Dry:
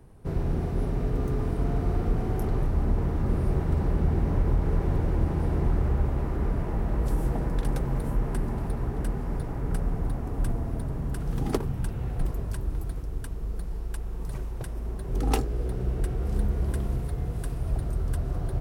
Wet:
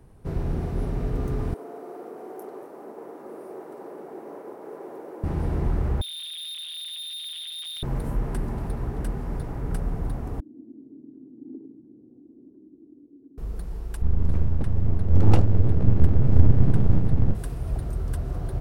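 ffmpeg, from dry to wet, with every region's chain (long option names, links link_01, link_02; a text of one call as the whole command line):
ffmpeg -i in.wav -filter_complex "[0:a]asettb=1/sr,asplit=3[link_01][link_02][link_03];[link_01]atrim=end=1.544[link_04];[link_02]atrim=start=1.54:end=5.24,asetpts=PTS-STARTPTS,afade=type=in:duration=0.004:curve=qsin,afade=type=out:start_time=3.696:duration=0.004:curve=qsin,highpass=frequency=370:width=0.5412,highpass=frequency=370:width=1.3066,equalizer=frequency=3400:width_type=o:width=2.9:gain=-13.5[link_05];[link_03]atrim=start=5.236[link_06];[link_04][link_05]acrossfade=duration=0.004:curve1=hsin:curve2=qsin[link_07];[link_07][link_06]acrossfade=duration=0.004:curve1=qsin:curve2=hsin,asettb=1/sr,asplit=3[link_08][link_09][link_10];[link_08]atrim=end=6.014[link_11];[link_09]atrim=start=6.01:end=7.83,asetpts=PTS-STARTPTS,afade=type=in:duration=0.004:curve=qsin,afade=type=out:start_time=1.816:duration=0.004:curve=qsin,lowpass=frequency=3100:width_type=q:width=0.5098,lowpass=frequency=3100:width_type=q:width=0.6013,lowpass=frequency=3100:width_type=q:width=0.9,lowpass=frequency=3100:width_type=q:width=2.563,afreqshift=-3700,tremolo=f=160:d=0.857,volume=33.5dB,asoftclip=hard,volume=-33.5dB[link_12];[link_10]atrim=start=7.826[link_13];[link_11][link_12]acrossfade=duration=0.004:curve1=hsin:curve2=qsin[link_14];[link_14][link_13]acrossfade=duration=0.004:curve1=qsin:curve2=hsin,asettb=1/sr,asplit=3[link_15][link_16][link_17];[link_15]atrim=end=10.404[link_18];[link_16]atrim=start=10.4:end=13.38,asetpts=PTS-STARTPTS,afade=type=in:duration=0.004:curve=qsin,afade=type=out:start_time=2.976:duration=0.004:curve=qsin,acompressor=threshold=-27dB:ratio=4:attack=3.2:release=140:knee=1:detection=peak,asuperpass=centerf=290:order=4:qfactor=3.4,aecho=1:1:102:0.501,atrim=end_sample=131418[link_19];[link_17]atrim=start=13.376[link_20];[link_18][link_19]acrossfade=duration=0.004:curve1=hsin:curve2=qsin[link_21];[link_21][link_20]acrossfade=duration=0.004:curve1=qsin:curve2=hsin,asettb=1/sr,asplit=3[link_22][link_23][link_24];[link_22]atrim=end=14.024[link_25];[link_23]atrim=start=14.02:end=17.35,asetpts=PTS-STARTPTS,afade=type=in:duration=0.004:curve=qsin,afade=type=out:start_time=3.326:duration=0.004:curve=qsin,aemphasis=mode=reproduction:type=bsi,aeval=exprs='abs(val(0))':channel_layout=same[link_26];[link_24]atrim=start=17.346[link_27];[link_25][link_26]acrossfade=duration=0.004:curve1=hsin:curve2=qsin[link_28];[link_28][link_27]acrossfade=duration=0.004:curve1=qsin:curve2=hsin" out.wav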